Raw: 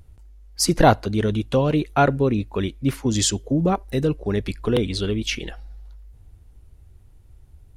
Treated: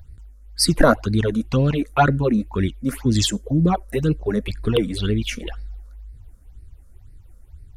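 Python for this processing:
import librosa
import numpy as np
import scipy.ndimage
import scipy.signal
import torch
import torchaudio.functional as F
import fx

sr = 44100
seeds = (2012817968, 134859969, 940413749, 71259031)

y = fx.vibrato(x, sr, rate_hz=1.0, depth_cents=32.0)
y = fx.phaser_stages(y, sr, stages=8, low_hz=100.0, high_hz=1000.0, hz=2.0, feedback_pct=35)
y = y * 10.0 ** (4.0 / 20.0)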